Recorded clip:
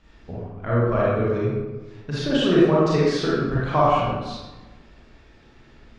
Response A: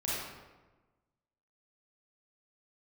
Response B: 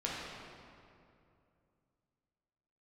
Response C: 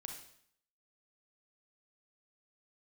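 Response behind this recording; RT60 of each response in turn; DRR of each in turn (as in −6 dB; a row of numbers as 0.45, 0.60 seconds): A; 1.2, 2.6, 0.65 seconds; −8.0, −6.0, 2.0 decibels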